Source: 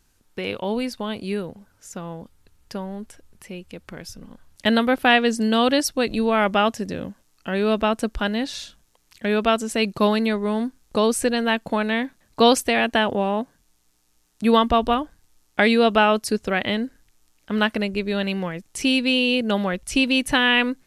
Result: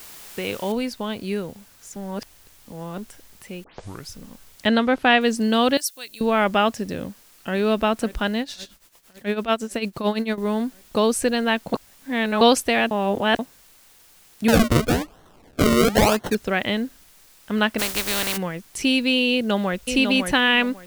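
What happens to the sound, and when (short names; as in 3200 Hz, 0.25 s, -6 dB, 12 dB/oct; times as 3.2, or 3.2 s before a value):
0.72 noise floor step -42 dB -53 dB
1.96–2.98 reverse
3.64 tape start 0.45 s
4.66–5.21 air absorption 52 m
5.77–6.21 pre-emphasis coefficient 0.97
7–7.57 echo throw 0.54 s, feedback 70%, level -15.5 dB
8.4–10.38 tremolo 8.9 Hz, depth 78%
11.74–12.41 reverse
12.91–13.39 reverse
14.48–16.35 decimation with a swept rate 36× 1 Hz
17.78–18.36 spectral contrast lowered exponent 0.33
19.32–19.85 echo throw 0.55 s, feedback 20%, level -5.5 dB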